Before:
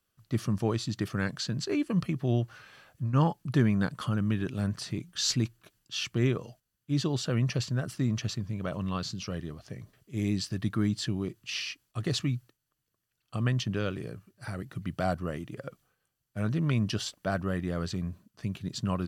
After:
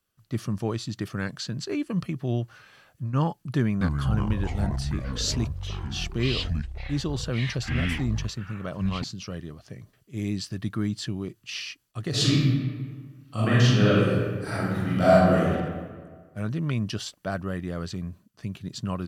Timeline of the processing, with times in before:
0:03.57–0:09.04: delay with pitch and tempo change per echo 240 ms, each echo −7 semitones, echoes 3
0:12.10–0:15.50: thrown reverb, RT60 1.6 s, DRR −11.5 dB

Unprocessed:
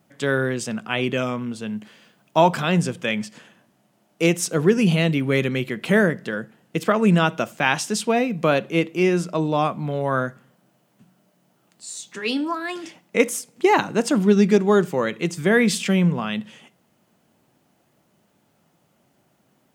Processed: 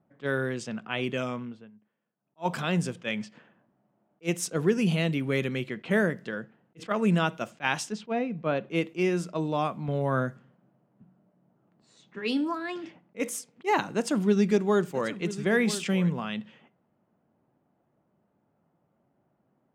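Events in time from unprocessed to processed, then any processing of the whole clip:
0:01.37–0:02.55: duck −19.5 dB, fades 0.34 s
0:07.92–0:08.71: head-to-tape spacing loss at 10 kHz 21 dB
0:09.88–0:13.20: low-shelf EQ 360 Hz +7 dB
0:13.91–0:16.10: single-tap delay 988 ms −14 dB
whole clip: low-pass that shuts in the quiet parts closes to 1,200 Hz, open at −18 dBFS; level that may rise only so fast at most 470 dB per second; level −7 dB

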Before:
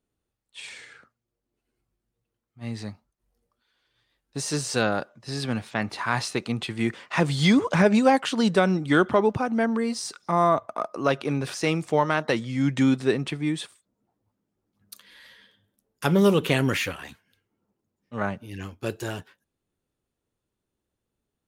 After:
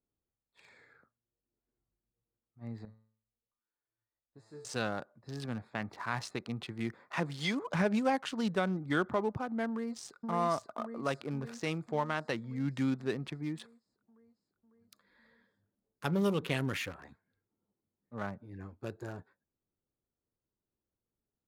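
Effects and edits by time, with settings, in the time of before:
0:02.85–0:04.65: tuned comb filter 110 Hz, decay 0.54 s, mix 90%
0:07.14–0:07.66: high-pass filter 120 Hz → 410 Hz
0:09.68–0:10.17: delay throw 550 ms, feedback 65%, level −4 dB
whole clip: adaptive Wiener filter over 15 samples; dynamic equaliser 410 Hz, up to −3 dB, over −31 dBFS, Q 0.75; level −9 dB

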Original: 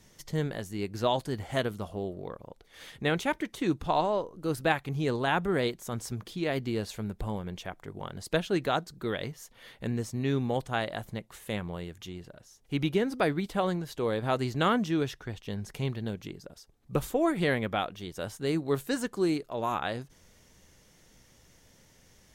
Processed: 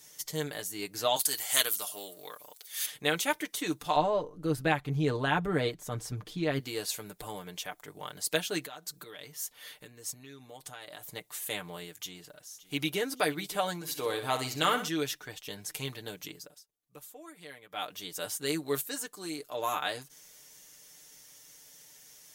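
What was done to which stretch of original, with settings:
0:01.16–0:02.86: spectral tilt +4 dB per octave
0:03.96–0:06.60: RIAA equalisation playback
0:08.62–0:11.08: downward compressor 12 to 1, threshold −39 dBFS
0:11.96–0:12.99: delay throw 570 ms, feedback 55%, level −17.5 dB
0:13.75–0:14.88: flutter between parallel walls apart 10.7 metres, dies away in 0.38 s
0:16.40–0:17.93: duck −19 dB, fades 0.24 s
0:18.81–0:19.38: clip gain −6.5 dB
whole clip: RIAA equalisation recording; comb filter 6.7 ms, depth 68%; level −2.5 dB

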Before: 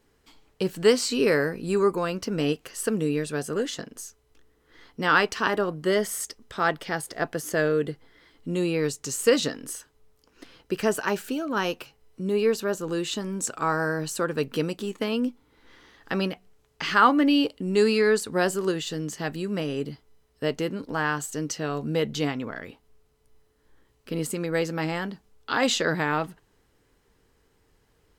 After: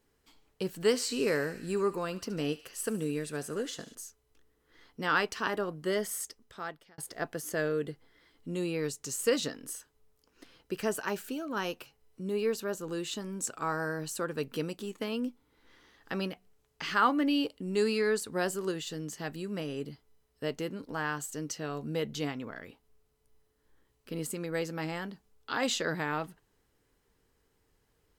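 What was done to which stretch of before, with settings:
0:00.73–0:03.95: feedback echo with a high-pass in the loop 73 ms, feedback 77%, high-pass 1,100 Hz, level −15.5 dB
0:06.15–0:06.98: fade out
whole clip: high-shelf EQ 9,200 Hz +6 dB; level −7.5 dB

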